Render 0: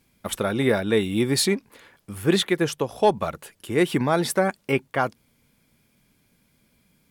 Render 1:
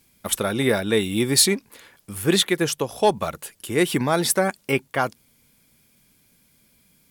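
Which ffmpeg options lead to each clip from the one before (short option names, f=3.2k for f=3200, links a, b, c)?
-af "highshelf=f=3.9k:g=9.5"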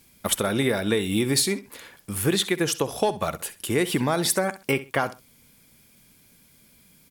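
-af "acompressor=threshold=-23dB:ratio=6,aecho=1:1:65|130:0.168|0.0386,volume=3.5dB"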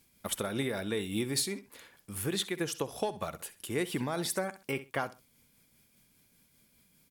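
-af "tremolo=f=5:d=0.29,volume=-8.5dB"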